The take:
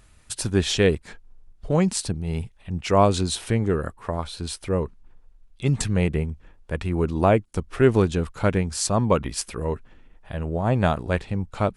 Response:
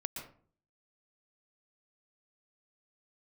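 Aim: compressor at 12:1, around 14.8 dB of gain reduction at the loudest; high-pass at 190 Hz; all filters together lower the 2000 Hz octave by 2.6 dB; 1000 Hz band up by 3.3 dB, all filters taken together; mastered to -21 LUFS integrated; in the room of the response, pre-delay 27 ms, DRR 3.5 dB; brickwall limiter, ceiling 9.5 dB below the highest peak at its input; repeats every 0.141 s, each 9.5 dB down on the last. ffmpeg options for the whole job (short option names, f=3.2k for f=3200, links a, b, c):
-filter_complex "[0:a]highpass=190,equalizer=f=1k:t=o:g=5.5,equalizer=f=2k:t=o:g=-5.5,acompressor=threshold=-26dB:ratio=12,alimiter=limit=-21dB:level=0:latency=1,aecho=1:1:141|282|423|564:0.335|0.111|0.0365|0.012,asplit=2[a][b];[1:a]atrim=start_sample=2205,adelay=27[c];[b][c]afir=irnorm=-1:irlink=0,volume=-3.5dB[d];[a][d]amix=inputs=2:normalize=0,volume=11.5dB"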